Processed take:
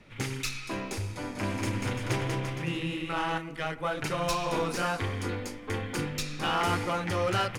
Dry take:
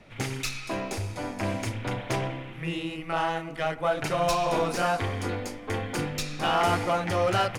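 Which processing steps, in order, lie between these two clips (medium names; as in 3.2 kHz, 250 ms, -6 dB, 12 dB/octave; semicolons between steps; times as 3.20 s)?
peaking EQ 680 Hz -8 dB 0.49 oct; 1.16–3.38 s: bouncing-ball echo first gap 190 ms, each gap 0.8×, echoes 5; trim -1.5 dB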